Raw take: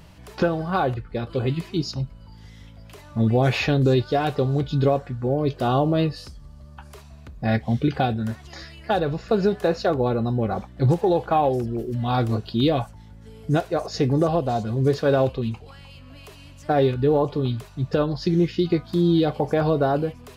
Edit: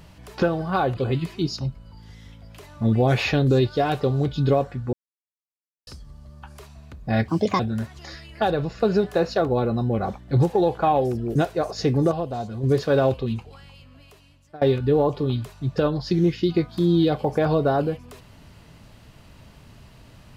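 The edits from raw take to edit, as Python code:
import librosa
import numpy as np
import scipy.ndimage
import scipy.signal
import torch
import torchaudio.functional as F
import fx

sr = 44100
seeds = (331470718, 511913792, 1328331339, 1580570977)

y = fx.edit(x, sr, fx.cut(start_s=0.97, length_s=0.35),
    fx.silence(start_s=5.28, length_s=0.94),
    fx.speed_span(start_s=7.63, length_s=0.45, speed=1.43),
    fx.cut(start_s=11.84, length_s=1.67),
    fx.clip_gain(start_s=14.27, length_s=0.52, db=-5.5),
    fx.fade_out_to(start_s=15.52, length_s=1.25, floor_db=-22.5), tone=tone)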